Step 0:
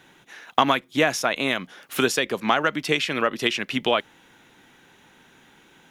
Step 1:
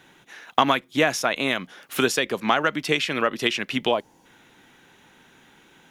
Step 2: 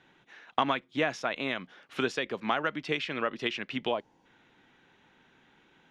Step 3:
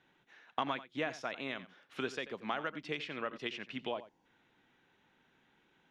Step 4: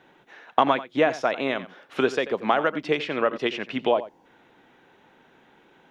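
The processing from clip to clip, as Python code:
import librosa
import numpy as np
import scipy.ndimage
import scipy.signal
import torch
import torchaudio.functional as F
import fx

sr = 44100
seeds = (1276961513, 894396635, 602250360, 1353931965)

y1 = fx.spec_box(x, sr, start_s=3.92, length_s=0.34, low_hz=1100.0, high_hz=4200.0, gain_db=-12)
y2 = scipy.signal.sosfilt(scipy.signal.butter(2, 4000.0, 'lowpass', fs=sr, output='sos'), y1)
y2 = F.gain(torch.from_numpy(y2), -8.0).numpy()
y3 = y2 + 10.0 ** (-15.0 / 20.0) * np.pad(y2, (int(88 * sr / 1000.0), 0))[:len(y2)]
y3 = F.gain(torch.from_numpy(y3), -8.0).numpy()
y4 = fx.peak_eq(y3, sr, hz=560.0, db=9.0, octaves=2.4)
y4 = F.gain(torch.from_numpy(y4), 9.0).numpy()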